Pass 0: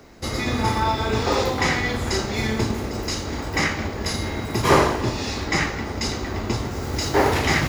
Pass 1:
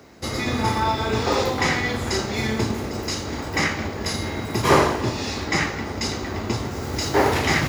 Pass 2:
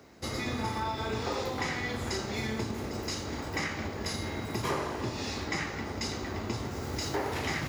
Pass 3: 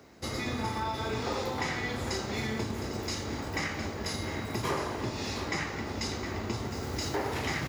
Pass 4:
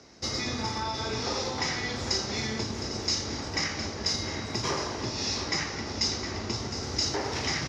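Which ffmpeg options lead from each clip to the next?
-af "highpass=70"
-af "acompressor=threshold=-22dB:ratio=5,volume=-7dB"
-af "aecho=1:1:711:0.266"
-af "lowpass=f=5.6k:t=q:w=4.6"

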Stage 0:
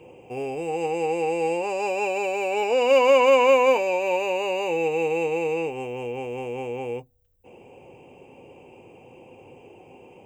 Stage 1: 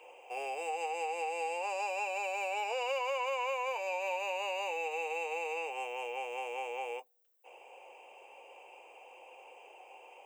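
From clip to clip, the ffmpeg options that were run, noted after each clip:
-af "highpass=f=630:w=0.5412,highpass=f=630:w=1.3066,acompressor=threshold=-33dB:ratio=5"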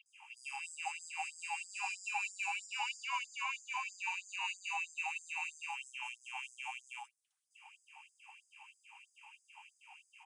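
-filter_complex "[0:a]acrossover=split=1200|3700[a][b][c];[c]adelay=60[d];[a]adelay=120[e];[e][b][d]amix=inputs=3:normalize=0,aresample=22050,aresample=44100,afftfilt=real='re*gte(b*sr/1024,750*pow(4900/750,0.5+0.5*sin(2*PI*3.1*pts/sr)))':imag='im*gte(b*sr/1024,750*pow(4900/750,0.5+0.5*sin(2*PI*3.1*pts/sr)))':win_size=1024:overlap=0.75,volume=3.5dB"

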